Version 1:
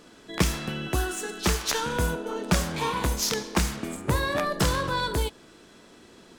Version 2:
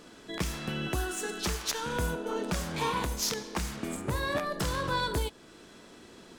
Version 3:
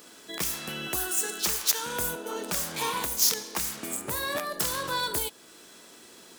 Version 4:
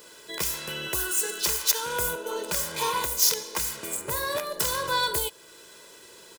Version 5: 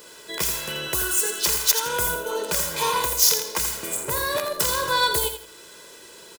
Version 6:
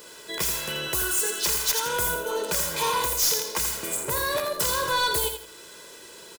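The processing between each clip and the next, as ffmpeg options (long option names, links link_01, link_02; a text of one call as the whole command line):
ffmpeg -i in.wav -af "alimiter=limit=-19dB:level=0:latency=1:release=419" out.wav
ffmpeg -i in.wav -af "aemphasis=mode=production:type=bsi" out.wav
ffmpeg -i in.wav -af "aecho=1:1:2:0.68" out.wav
ffmpeg -i in.wav -af "aecho=1:1:83|166|249:0.376|0.101|0.0274,volume=3.5dB" out.wav
ffmpeg -i in.wav -af "asoftclip=type=tanh:threshold=-17.5dB" out.wav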